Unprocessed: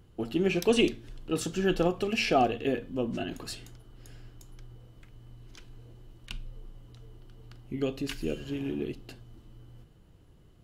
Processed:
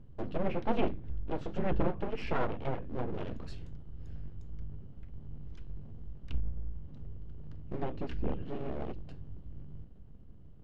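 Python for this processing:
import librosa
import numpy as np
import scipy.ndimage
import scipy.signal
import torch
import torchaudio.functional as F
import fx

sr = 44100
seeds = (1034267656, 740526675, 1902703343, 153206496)

y = fx.riaa(x, sr, side='playback')
y = np.abs(y)
y = fx.env_lowpass_down(y, sr, base_hz=2700.0, full_db=-19.5)
y = y * 10.0 ** (-8.0 / 20.0)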